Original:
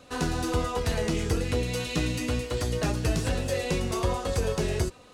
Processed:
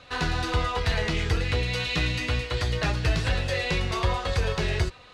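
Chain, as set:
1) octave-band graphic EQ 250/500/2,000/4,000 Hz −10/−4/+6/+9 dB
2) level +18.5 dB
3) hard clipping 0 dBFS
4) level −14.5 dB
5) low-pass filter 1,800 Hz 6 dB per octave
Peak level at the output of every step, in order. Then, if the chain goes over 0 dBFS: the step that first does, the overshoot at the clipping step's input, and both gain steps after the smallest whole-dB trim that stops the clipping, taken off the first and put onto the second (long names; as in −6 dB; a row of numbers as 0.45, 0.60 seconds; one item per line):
−13.0, +5.5, 0.0, −14.5, −14.5 dBFS
step 2, 5.5 dB
step 2 +12.5 dB, step 4 −8.5 dB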